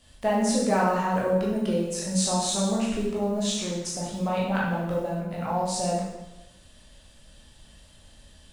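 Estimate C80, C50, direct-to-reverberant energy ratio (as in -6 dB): 4.5 dB, 1.5 dB, -5.5 dB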